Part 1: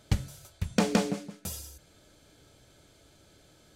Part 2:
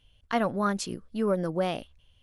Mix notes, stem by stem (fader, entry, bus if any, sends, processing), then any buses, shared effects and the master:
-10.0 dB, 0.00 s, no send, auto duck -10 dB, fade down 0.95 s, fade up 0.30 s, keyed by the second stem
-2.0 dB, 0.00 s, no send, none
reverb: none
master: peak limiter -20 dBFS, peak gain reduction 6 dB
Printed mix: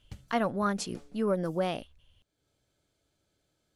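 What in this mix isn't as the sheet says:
stem 1 -10.0 dB -> -17.5 dB; master: missing peak limiter -20 dBFS, peak gain reduction 6 dB

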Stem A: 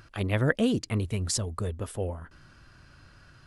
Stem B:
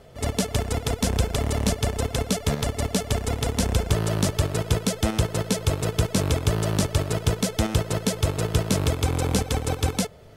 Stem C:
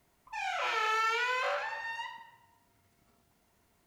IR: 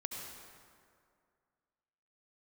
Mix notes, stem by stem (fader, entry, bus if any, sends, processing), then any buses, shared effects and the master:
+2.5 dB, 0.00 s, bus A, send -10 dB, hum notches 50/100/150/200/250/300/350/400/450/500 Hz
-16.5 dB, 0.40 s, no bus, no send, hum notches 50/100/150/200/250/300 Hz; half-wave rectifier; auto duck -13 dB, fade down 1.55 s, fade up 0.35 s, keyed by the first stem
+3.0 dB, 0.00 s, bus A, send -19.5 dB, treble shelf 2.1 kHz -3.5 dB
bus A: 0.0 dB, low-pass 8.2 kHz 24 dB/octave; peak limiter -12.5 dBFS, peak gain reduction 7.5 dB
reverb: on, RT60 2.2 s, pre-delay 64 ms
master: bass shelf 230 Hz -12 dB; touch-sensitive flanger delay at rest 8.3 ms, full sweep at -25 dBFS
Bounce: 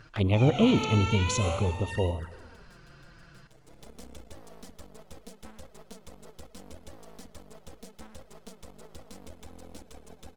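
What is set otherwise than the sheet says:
stem A: missing hum notches 50/100/150/200/250/300/350/400/450/500 Hz; stem C: missing treble shelf 2.1 kHz -3.5 dB; master: missing bass shelf 230 Hz -12 dB

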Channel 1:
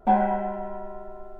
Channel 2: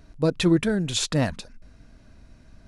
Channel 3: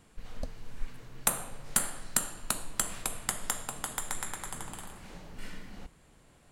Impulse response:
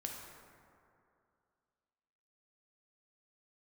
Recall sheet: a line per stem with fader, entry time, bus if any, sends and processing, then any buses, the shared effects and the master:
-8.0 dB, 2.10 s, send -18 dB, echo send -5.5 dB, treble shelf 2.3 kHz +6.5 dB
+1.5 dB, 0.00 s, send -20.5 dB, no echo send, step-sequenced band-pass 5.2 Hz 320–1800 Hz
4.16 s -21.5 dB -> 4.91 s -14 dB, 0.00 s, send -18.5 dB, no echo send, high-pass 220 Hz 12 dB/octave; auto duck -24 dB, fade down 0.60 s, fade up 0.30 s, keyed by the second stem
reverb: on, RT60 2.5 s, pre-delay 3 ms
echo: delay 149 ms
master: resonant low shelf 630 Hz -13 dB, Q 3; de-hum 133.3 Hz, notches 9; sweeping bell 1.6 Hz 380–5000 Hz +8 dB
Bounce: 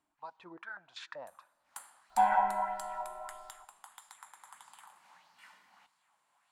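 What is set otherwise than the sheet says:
stem 2 +1.5 dB -> -9.5 dB; master: missing de-hum 133.3 Hz, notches 9

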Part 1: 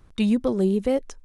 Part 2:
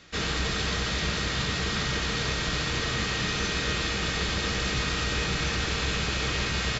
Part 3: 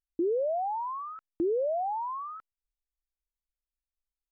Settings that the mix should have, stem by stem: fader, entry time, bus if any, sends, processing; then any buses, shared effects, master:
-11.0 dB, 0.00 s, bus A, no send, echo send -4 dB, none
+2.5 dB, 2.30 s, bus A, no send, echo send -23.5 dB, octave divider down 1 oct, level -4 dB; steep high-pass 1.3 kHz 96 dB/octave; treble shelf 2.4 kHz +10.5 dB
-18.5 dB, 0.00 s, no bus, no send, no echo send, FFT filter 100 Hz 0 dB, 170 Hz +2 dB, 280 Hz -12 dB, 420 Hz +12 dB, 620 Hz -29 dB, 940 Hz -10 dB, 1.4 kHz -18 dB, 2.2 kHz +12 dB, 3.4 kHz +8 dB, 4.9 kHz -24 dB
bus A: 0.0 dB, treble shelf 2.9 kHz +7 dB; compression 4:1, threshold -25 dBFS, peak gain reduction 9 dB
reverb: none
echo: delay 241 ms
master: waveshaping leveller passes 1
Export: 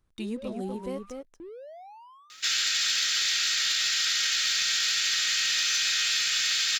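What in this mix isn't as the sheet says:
stem 1 -11.0 dB -> -17.5 dB; stem 2 +2.5 dB -> -7.0 dB; stem 3: missing FFT filter 100 Hz 0 dB, 170 Hz +2 dB, 280 Hz -12 dB, 420 Hz +12 dB, 620 Hz -29 dB, 940 Hz -10 dB, 1.4 kHz -18 dB, 2.2 kHz +12 dB, 3.4 kHz +8 dB, 4.9 kHz -24 dB

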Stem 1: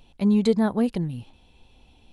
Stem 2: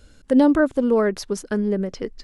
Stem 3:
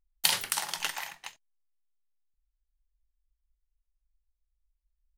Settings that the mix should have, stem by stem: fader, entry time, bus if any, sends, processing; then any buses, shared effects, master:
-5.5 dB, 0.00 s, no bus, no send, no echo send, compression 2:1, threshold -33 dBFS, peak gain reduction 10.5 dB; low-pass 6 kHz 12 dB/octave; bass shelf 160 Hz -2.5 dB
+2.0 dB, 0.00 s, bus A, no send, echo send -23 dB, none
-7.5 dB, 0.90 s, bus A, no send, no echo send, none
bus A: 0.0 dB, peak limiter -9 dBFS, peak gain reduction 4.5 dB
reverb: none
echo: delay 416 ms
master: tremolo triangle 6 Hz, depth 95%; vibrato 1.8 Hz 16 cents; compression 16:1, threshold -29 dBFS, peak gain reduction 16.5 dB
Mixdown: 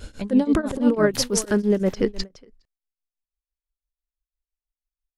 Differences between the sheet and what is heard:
stem 1 -5.5 dB -> +4.5 dB; stem 2 +2.0 dB -> +13.5 dB; master: missing compression 16:1, threshold -29 dBFS, peak gain reduction 16.5 dB

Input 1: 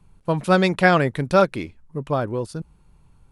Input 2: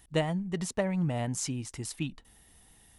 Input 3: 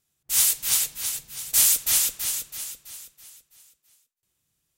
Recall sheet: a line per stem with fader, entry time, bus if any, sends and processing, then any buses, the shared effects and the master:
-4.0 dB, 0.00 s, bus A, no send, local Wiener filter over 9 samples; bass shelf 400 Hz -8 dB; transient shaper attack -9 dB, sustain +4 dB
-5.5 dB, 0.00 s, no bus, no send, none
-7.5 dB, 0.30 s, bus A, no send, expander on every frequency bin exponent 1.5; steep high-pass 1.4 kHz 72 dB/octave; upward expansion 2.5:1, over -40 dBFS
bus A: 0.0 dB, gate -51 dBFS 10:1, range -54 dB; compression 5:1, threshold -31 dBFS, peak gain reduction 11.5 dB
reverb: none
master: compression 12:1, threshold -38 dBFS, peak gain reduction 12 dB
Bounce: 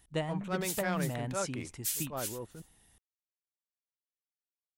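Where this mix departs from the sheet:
stem 1 -4.0 dB -> -10.0 dB; master: missing compression 12:1, threshold -38 dBFS, peak gain reduction 12 dB

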